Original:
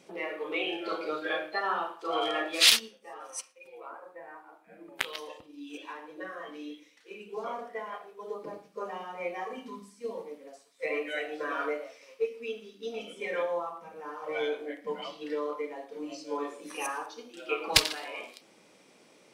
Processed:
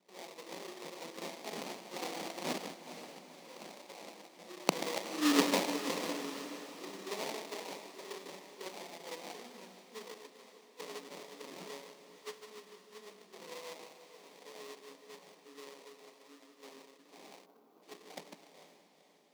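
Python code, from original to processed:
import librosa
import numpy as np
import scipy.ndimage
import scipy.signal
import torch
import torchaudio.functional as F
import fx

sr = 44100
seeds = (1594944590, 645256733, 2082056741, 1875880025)

p1 = scipy.ndimage.median_filter(x, 9, mode='constant')
p2 = fx.doppler_pass(p1, sr, speed_mps=22, closest_m=1.8, pass_at_s=5.33)
p3 = p2 + 10.0 ** (-9.0 / 20.0) * np.pad(p2, (int(152 * sr / 1000.0), 0))[:len(p2)]
p4 = fx.rider(p3, sr, range_db=5, speed_s=2.0)
p5 = p3 + (p4 * 10.0 ** (-2.5 / 20.0))
p6 = fx.dynamic_eq(p5, sr, hz=330.0, q=2.4, threshold_db=-59.0, ratio=4.0, max_db=-3)
p7 = fx.sample_hold(p6, sr, seeds[0], rate_hz=1500.0, jitter_pct=20)
p8 = scipy.signal.sosfilt(scipy.signal.ellip(4, 1.0, 40, 170.0, 'highpass', fs=sr, output='sos'), p7)
p9 = p8 + fx.echo_diffused(p8, sr, ms=477, feedback_pct=56, wet_db=-12.0, dry=0)
p10 = fx.spec_box(p9, sr, start_s=17.46, length_s=0.37, low_hz=1600.0, high_hz=11000.0, gain_db=-12)
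p11 = fx.peak_eq(p10, sr, hz=4700.0, db=7.5, octaves=1.9)
y = p11 * 10.0 ** (14.5 / 20.0)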